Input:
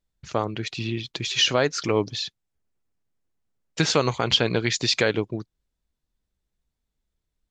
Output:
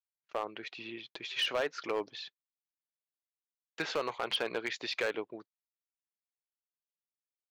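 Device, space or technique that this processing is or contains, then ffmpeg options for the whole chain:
walkie-talkie: -af "highpass=480,lowpass=2700,asoftclip=type=hard:threshold=-18.5dB,agate=range=-39dB:threshold=-45dB:ratio=16:detection=peak,volume=-6.5dB"

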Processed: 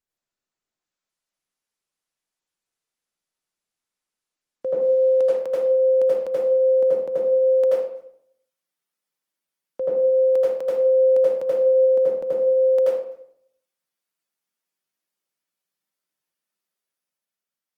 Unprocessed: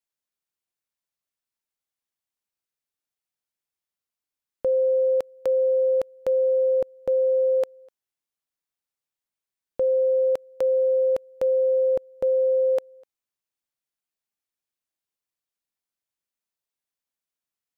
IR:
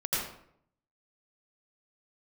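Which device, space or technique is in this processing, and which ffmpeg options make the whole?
far-field microphone of a smart speaker: -filter_complex "[0:a]asplit=3[link_01][link_02][link_03];[link_01]afade=type=out:start_time=10.66:duration=0.02[link_04];[link_02]equalizer=frequency=560:width=5.4:gain=3,afade=type=in:start_time=10.66:duration=0.02,afade=type=out:start_time=11.73:duration=0.02[link_05];[link_03]afade=type=in:start_time=11.73:duration=0.02[link_06];[link_04][link_05][link_06]amix=inputs=3:normalize=0[link_07];[1:a]atrim=start_sample=2205[link_08];[link_07][link_08]afir=irnorm=-1:irlink=0,highpass=frequency=160:width=0.5412,highpass=frequency=160:width=1.3066,dynaudnorm=framelen=130:gausssize=13:maxgain=4dB,volume=-6dB" -ar 48000 -c:a libopus -b:a 20k

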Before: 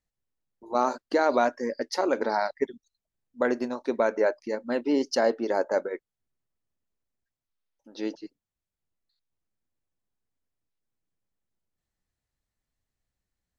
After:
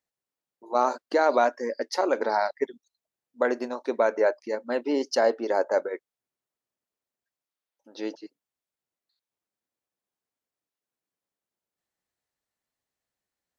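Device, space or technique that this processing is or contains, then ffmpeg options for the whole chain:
filter by subtraction: -filter_complex "[0:a]asplit=2[link_01][link_02];[link_02]lowpass=570,volume=-1[link_03];[link_01][link_03]amix=inputs=2:normalize=0"

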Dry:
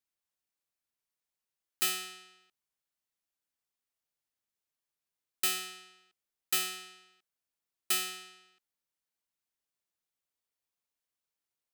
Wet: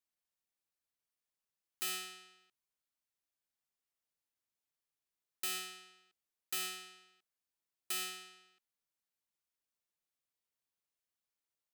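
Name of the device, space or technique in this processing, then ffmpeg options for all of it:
soft clipper into limiter: -af "asoftclip=type=tanh:threshold=-19dB,alimiter=level_in=1.5dB:limit=-24dB:level=0:latency=1:release=94,volume=-1.5dB,volume=-3.5dB"

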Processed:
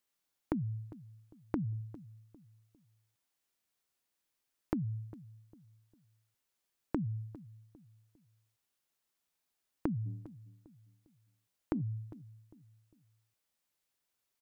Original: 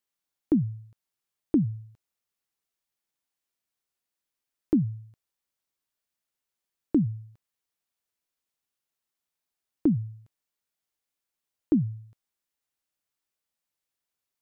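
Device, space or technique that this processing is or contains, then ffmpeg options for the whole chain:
serial compression, leveller first: -filter_complex "[0:a]asplit=3[link_01][link_02][link_03];[link_01]afade=type=out:start_time=10.05:duration=0.02[link_04];[link_02]bandreject=frequency=94.48:width_type=h:width=4,bandreject=frequency=188.96:width_type=h:width=4,bandreject=frequency=283.44:width_type=h:width=4,bandreject=frequency=377.92:width_type=h:width=4,bandreject=frequency=472.4:width_type=h:width=4,bandreject=frequency=566.88:width_type=h:width=4,bandreject=frequency=661.36:width_type=h:width=4,bandreject=frequency=755.84:width_type=h:width=4,bandreject=frequency=850.32:width_type=h:width=4,bandreject=frequency=944.8:width_type=h:width=4,bandreject=frequency=1039.28:width_type=h:width=4,bandreject=frequency=1133.76:width_type=h:width=4,afade=type=in:start_time=10.05:duration=0.02,afade=type=out:start_time=11.8:duration=0.02[link_05];[link_03]afade=type=in:start_time=11.8:duration=0.02[link_06];[link_04][link_05][link_06]amix=inputs=3:normalize=0,acompressor=threshold=-25dB:ratio=6,acompressor=threshold=-34dB:ratio=6,asplit=2[link_07][link_08];[link_08]adelay=402,lowpass=frequency=800:poles=1,volume=-17dB,asplit=2[link_09][link_10];[link_10]adelay=402,lowpass=frequency=800:poles=1,volume=0.37,asplit=2[link_11][link_12];[link_12]adelay=402,lowpass=frequency=800:poles=1,volume=0.37[link_13];[link_07][link_09][link_11][link_13]amix=inputs=4:normalize=0,volume=2.5dB"

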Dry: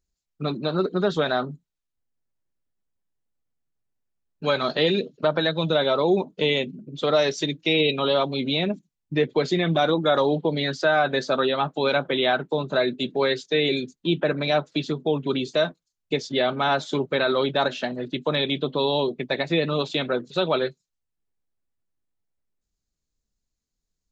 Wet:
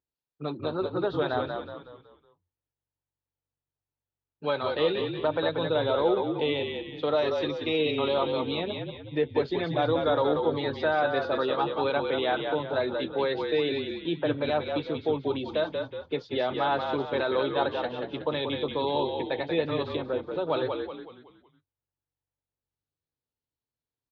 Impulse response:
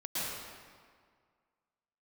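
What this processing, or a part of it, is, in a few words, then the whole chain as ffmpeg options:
frequency-shifting delay pedal into a guitar cabinet: -filter_complex "[0:a]asplit=6[link_01][link_02][link_03][link_04][link_05][link_06];[link_02]adelay=185,afreqshift=-47,volume=-5dB[link_07];[link_03]adelay=370,afreqshift=-94,volume=-12.3dB[link_08];[link_04]adelay=555,afreqshift=-141,volume=-19.7dB[link_09];[link_05]adelay=740,afreqshift=-188,volume=-27dB[link_10];[link_06]adelay=925,afreqshift=-235,volume=-34.3dB[link_11];[link_01][link_07][link_08][link_09][link_10][link_11]amix=inputs=6:normalize=0,highpass=100,equalizer=frequency=120:width_type=q:width=4:gain=4,equalizer=frequency=200:width_type=q:width=4:gain=-10,equalizer=frequency=290:width_type=q:width=4:gain=3,equalizer=frequency=490:width_type=q:width=4:gain=5,equalizer=frequency=890:width_type=q:width=4:gain=7,equalizer=frequency=2200:width_type=q:width=4:gain=-3,lowpass=frequency=3900:width=0.5412,lowpass=frequency=3900:width=1.3066,asplit=3[link_12][link_13][link_14];[link_12]afade=type=out:start_time=19.95:duration=0.02[link_15];[link_13]equalizer=frequency=4000:width=0.41:gain=-10,afade=type=in:start_time=19.95:duration=0.02,afade=type=out:start_time=20.48:duration=0.02[link_16];[link_14]afade=type=in:start_time=20.48:duration=0.02[link_17];[link_15][link_16][link_17]amix=inputs=3:normalize=0,volume=-7.5dB"

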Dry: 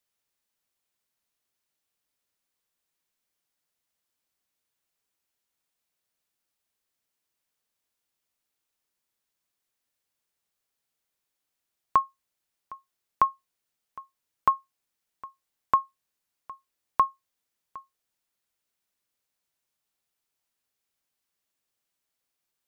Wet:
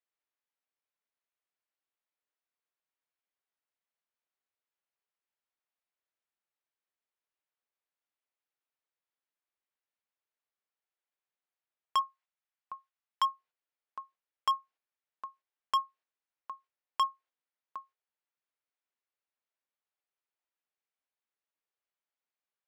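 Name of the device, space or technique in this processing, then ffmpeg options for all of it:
walkie-talkie: -filter_complex "[0:a]asettb=1/sr,asplit=3[link_01][link_02][link_03];[link_01]atrim=end=12.014[link_04];[link_02]atrim=start=12.01:end=13.22,asetpts=PTS-STARTPTS,afade=type=in:duration=0.004:curve=qsin,afade=type=out:start_time=1.206:duration=0.004:curve=qsin,highpass=700[link_05];[link_03]atrim=start=13.216[link_06];[link_04][link_05]acrossfade=duration=0.004:curve1=hsin:curve2=qsin[link_07];[link_07][link_06]acrossfade=duration=0.004:curve1=qsin:curve2=hsin,highpass=410,lowpass=2700,asoftclip=type=hard:threshold=-23dB,agate=range=-7dB:threshold=-59dB:ratio=16:detection=peak"

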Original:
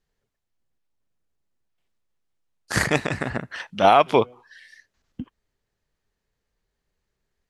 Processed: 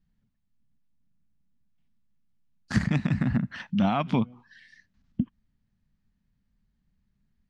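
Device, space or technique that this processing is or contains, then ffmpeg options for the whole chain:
jukebox: -af "lowpass=5300,lowshelf=frequency=300:width_type=q:width=3:gain=11.5,acompressor=threshold=-16dB:ratio=4,volume=-5dB"

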